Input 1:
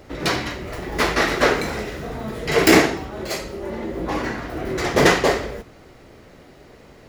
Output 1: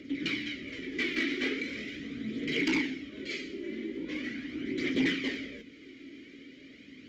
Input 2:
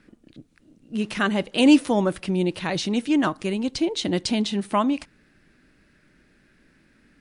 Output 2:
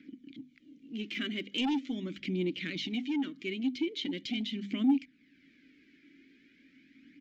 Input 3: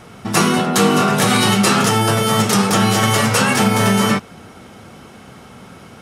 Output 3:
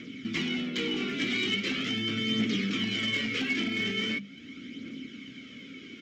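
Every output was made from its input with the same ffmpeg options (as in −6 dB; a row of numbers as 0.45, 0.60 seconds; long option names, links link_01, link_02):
-filter_complex "[0:a]asplit=3[link_01][link_02][link_03];[link_01]bandpass=frequency=270:width_type=q:width=8,volume=0dB[link_04];[link_02]bandpass=frequency=2290:width_type=q:width=8,volume=-6dB[link_05];[link_03]bandpass=frequency=3010:width_type=q:width=8,volume=-9dB[link_06];[link_04][link_05][link_06]amix=inputs=3:normalize=0,acrossover=split=4300[link_07][link_08];[link_08]acompressor=threshold=-56dB:ratio=4:attack=1:release=60[link_09];[link_07][link_09]amix=inputs=2:normalize=0,equalizer=frequency=770:width_type=o:width=0.32:gain=-7.5,bandreject=frequency=50:width_type=h:width=6,bandreject=frequency=100:width_type=h:width=6,bandreject=frequency=150:width_type=h:width=6,bandreject=frequency=200:width_type=h:width=6,bandreject=frequency=250:width_type=h:width=6,acompressor=threshold=-53dB:ratio=1.5,aresample=16000,aeval=exprs='0.1*sin(PI/2*2.82*val(0)/0.1)':channel_layout=same,aresample=44100,aphaser=in_gain=1:out_gain=1:delay=3.1:decay=0.4:speed=0.41:type=triangular,highshelf=frequency=4100:gain=10,volume=-4dB"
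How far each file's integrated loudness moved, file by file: −12.0, −10.5, −14.5 LU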